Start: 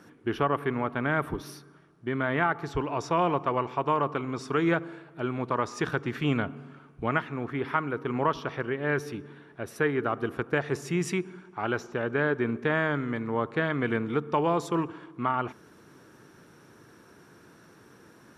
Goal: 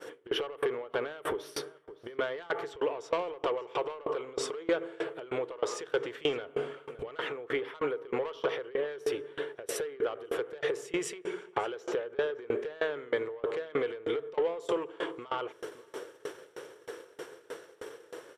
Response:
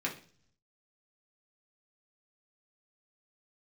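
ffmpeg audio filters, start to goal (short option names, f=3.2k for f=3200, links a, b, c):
-filter_complex "[0:a]agate=range=-33dB:threshold=-45dB:ratio=3:detection=peak,aeval=exprs='0.316*sin(PI/2*1.78*val(0)/0.316)':c=same,lowshelf=f=300:t=q:w=3:g=-11.5,acontrast=77,alimiter=limit=-13.5dB:level=0:latency=1:release=69,acompressor=threshold=-35dB:ratio=5,equalizer=f=160:t=o:w=0.33:g=4,equalizer=f=500:t=o:w=0.33:g=9,equalizer=f=2k:t=o:w=0.33:g=3,equalizer=f=3.15k:t=o:w=0.33:g=10,equalizer=f=8k:t=o:w=0.33:g=7,asplit=2[a][b];[b]adelay=565.6,volume=-18dB,highshelf=f=4k:g=-12.7[c];[a][c]amix=inputs=2:normalize=0,asplit=2[d][e];[1:a]atrim=start_sample=2205,asetrate=36162,aresample=44100[f];[e][f]afir=irnorm=-1:irlink=0,volume=-19dB[g];[d][g]amix=inputs=2:normalize=0,aeval=exprs='val(0)*pow(10,-25*if(lt(mod(3.2*n/s,1),2*abs(3.2)/1000),1-mod(3.2*n/s,1)/(2*abs(3.2)/1000),(mod(3.2*n/s,1)-2*abs(3.2)/1000)/(1-2*abs(3.2)/1000))/20)':c=same,volume=5.5dB"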